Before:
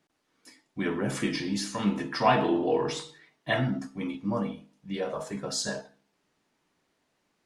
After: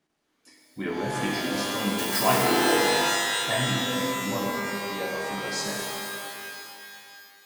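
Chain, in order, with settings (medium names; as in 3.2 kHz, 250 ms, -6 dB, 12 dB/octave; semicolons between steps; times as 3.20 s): 1.98–2.43 s: zero-crossing glitches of -17 dBFS; pitch-shifted reverb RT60 2.5 s, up +12 st, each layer -2 dB, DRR -0.5 dB; trim -3 dB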